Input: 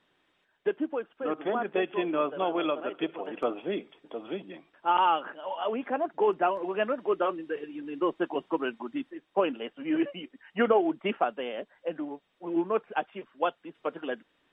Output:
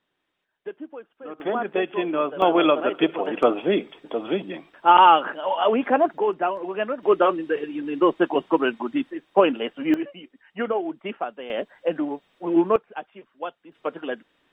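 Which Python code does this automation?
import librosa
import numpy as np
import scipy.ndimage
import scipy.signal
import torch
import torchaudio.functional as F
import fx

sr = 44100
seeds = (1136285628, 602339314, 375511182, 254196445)

y = fx.gain(x, sr, db=fx.steps((0.0, -6.5), (1.4, 4.0), (2.42, 10.5), (6.18, 2.0), (7.03, 9.0), (9.94, -2.0), (11.5, 9.0), (12.76, -4.0), (13.72, 4.0)))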